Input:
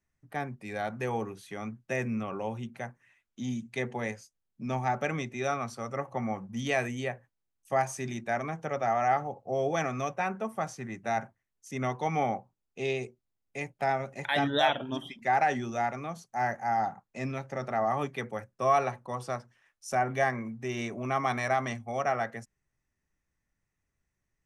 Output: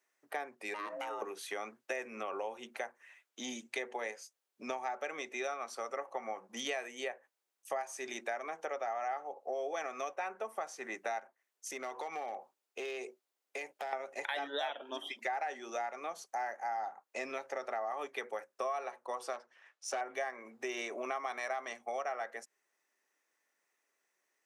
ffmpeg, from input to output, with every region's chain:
-filter_complex "[0:a]asettb=1/sr,asplit=3[a][b][c];[a]atrim=end=0.744[d];[b]atrim=start=0.74:end=1.22,asetpts=PTS-STARTPTS,afade=t=in:d=0.004:c=qsin,afade=t=out:st=0.476:d=0.004:c=qsin,acompressor=threshold=-38dB:ratio=3:attack=3.2:release=140:knee=1:detection=peak,aeval=exprs='val(0)*sin(2*PI*410*n/s)':c=same[e];[c]atrim=start=1.216[f];[d][e]acrossfade=d=0.004:c1=hsin:c2=qsin[g];[g][f]acrossfade=d=0.004:c1=qsin:c2=hsin,asettb=1/sr,asplit=3[h][i][j];[h]atrim=end=11.194[k];[i]atrim=start=11.19:end=13.93,asetpts=PTS-STARTPTS,afade=t=in:d=0.004:c=qsin,afade=t=out:st=2.736:d=0.004:c=qsin,acompressor=threshold=-40dB:ratio=5:attack=3.2:release=140:knee=1:detection=peak,asoftclip=type=hard:threshold=-36.5dB[l];[j]atrim=start=13.926[m];[k][l]acrossfade=d=0.004:c1=hsin:c2=qsin[n];[n][m]acrossfade=d=0.004:c1=qsin:c2=hsin,asettb=1/sr,asplit=3[o][p][q];[o]atrim=end=19.334[r];[p]atrim=start=19.33:end=20.01,asetpts=PTS-STARTPTS,afade=t=in:d=0.004:c=qsin,afade=t=out:st=0.676:d=0.004:c=qsin,highpass=130,aeval=exprs='clip(val(0),-1,0.0251)':c=same,adynamicsmooth=sensitivity=3.5:basefreq=6.2k[s];[q]atrim=start=20.006[t];[r][s]acrossfade=d=0.004:c1=hsin:c2=qsin[u];[u][t]acrossfade=d=0.004:c1=qsin:c2=hsin,highpass=f=390:w=0.5412,highpass=f=390:w=1.3066,acompressor=threshold=-43dB:ratio=5,volume=6.5dB"

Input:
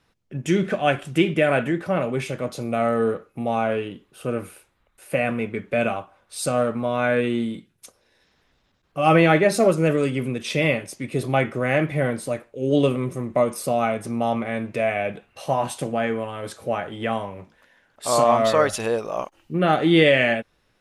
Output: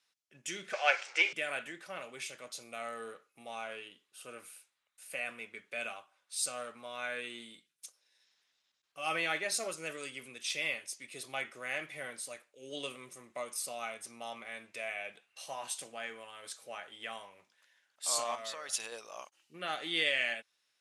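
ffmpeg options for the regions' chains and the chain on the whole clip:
-filter_complex "[0:a]asettb=1/sr,asplit=3[a][b][c];[a]atrim=end=0.734[d];[b]atrim=start=0.73:end=1.33,asetpts=PTS-STARTPTS,afade=t=in:d=0.004:c=qsin,afade=t=out:st=0.596:d=0.004:c=qsin,acontrast=33,acrusher=bits=5:mix=0:aa=0.5,highpass=f=430:w=0.5412,highpass=f=430:w=1.3066,equalizer=f=500:t=q:w=4:g=9,equalizer=f=850:t=q:w=4:g=8,equalizer=f=1.4k:t=q:w=4:g=6,equalizer=f=2.2k:t=q:w=4:g=9,equalizer=f=3.5k:t=q:w=4:g=-5,equalizer=f=5.5k:t=q:w=4:g=3,lowpass=f=6.2k:w=0.5412,lowpass=f=6.2k:w=1.3066[e];[c]atrim=start=1.326[f];[d][e]acrossfade=d=0.004:c1=hsin:c2=qsin[g];[g][f]acrossfade=d=0.004:c1=qsin:c2=hsin,asettb=1/sr,asplit=3[h][i][j];[h]atrim=end=18.354[k];[i]atrim=start=18.35:end=18.92,asetpts=PTS-STARTPTS,afade=t=in:d=0.004:c=qsin,afade=t=out:st=0.566:d=0.004:c=qsin,highpass=40,acompressor=threshold=-22dB:ratio=4:attack=3.2:release=140:knee=1:detection=peak[l];[j]atrim=start=18.916[m];[k][l]acrossfade=d=0.004:c1=hsin:c2=qsin[n];[n][m]acrossfade=d=0.004:c1=qsin:c2=hsin,lowpass=7.7k,aderivative"

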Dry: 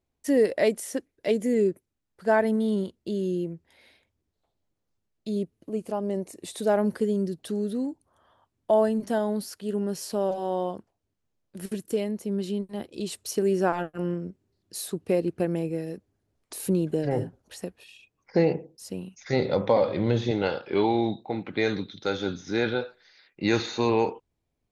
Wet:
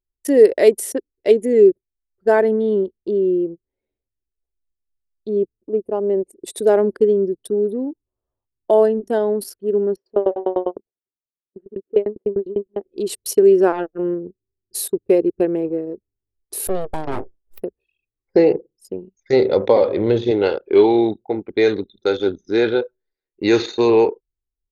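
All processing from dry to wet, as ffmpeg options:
-filter_complex "[0:a]asettb=1/sr,asplit=3[a][b][c];[a]atrim=end=9.964[d];[b]atrim=start=9.96:end=12.87,asetpts=PTS-STARTPTS,afade=t=in:d=0.004:c=qsin,afade=t=out:st=2.906:d=0.004:c=qsin,acontrast=47,highpass=220,lowpass=2.6k,aeval=exprs='val(0)*pow(10,-20*if(lt(mod(10*n/s,1),2*abs(10)/1000),1-mod(10*n/s,1)/(2*abs(10)/1000),(mod(10*n/s,1)-2*abs(10)/1000)/(1-2*abs(10)/1000))/20)':c=same[e];[c]atrim=start=12.866[f];[d][e]acrossfade=d=0.004:c1=hsin:c2=qsin[g];[g][f]acrossfade=d=0.004:c1=qsin:c2=hsin,asettb=1/sr,asplit=3[h][i][j];[h]atrim=end=16.674[k];[i]atrim=start=16.67:end=17.62,asetpts=PTS-STARTPTS,afade=t=in:d=0.004:c=qsin,afade=t=out:st=0.946:d=0.004:c=qsin,highpass=150,highshelf=f=7.2k:g=8,aeval=exprs='abs(val(0))':c=same[l];[j]atrim=start=17.616[m];[k][l]acrossfade=d=0.004:c1=hsin:c2=qsin[n];[n][m]acrossfade=d=0.004:c1=qsin:c2=hsin,aemphasis=mode=production:type=cd,anlmdn=15.8,equalizer=f=160:t=o:w=0.67:g=-8,equalizer=f=400:t=o:w=0.67:g=11,equalizer=f=6.3k:t=o:w=0.67:g=-4,volume=3.5dB"

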